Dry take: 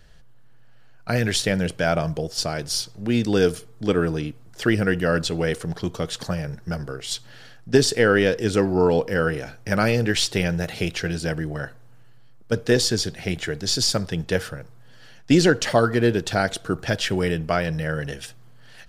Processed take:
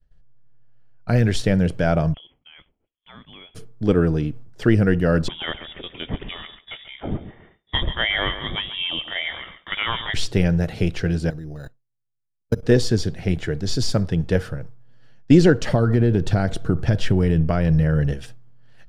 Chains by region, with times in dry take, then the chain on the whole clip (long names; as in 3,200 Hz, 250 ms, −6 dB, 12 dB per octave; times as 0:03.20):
0:02.14–0:03.55: high-pass filter 540 Hz 24 dB per octave + downward compressor 12 to 1, threshold −35 dBFS + voice inversion scrambler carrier 3,800 Hz
0:05.28–0:10.14: spectral tilt +3.5 dB per octave + repeating echo 137 ms, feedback 35%, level −12 dB + voice inversion scrambler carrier 3,600 Hz
0:11.30–0:12.63: output level in coarse steps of 19 dB + bad sample-rate conversion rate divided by 8×, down none, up hold + one half of a high-frequency compander decoder only
0:15.68–0:18.14: low-shelf EQ 220 Hz +7 dB + downward compressor 4 to 1, threshold −17 dBFS
whole clip: downward expander −37 dBFS; spectral tilt −2.5 dB per octave; level −1 dB